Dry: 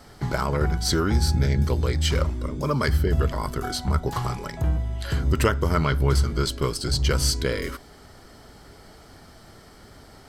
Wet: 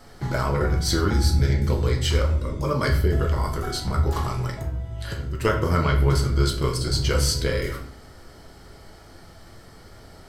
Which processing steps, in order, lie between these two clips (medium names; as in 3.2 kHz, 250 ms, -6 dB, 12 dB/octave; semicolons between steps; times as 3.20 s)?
4.55–5.45 s: compression 5:1, threshold -28 dBFS, peak gain reduction 11 dB; simulated room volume 71 m³, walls mixed, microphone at 0.64 m; trim -2 dB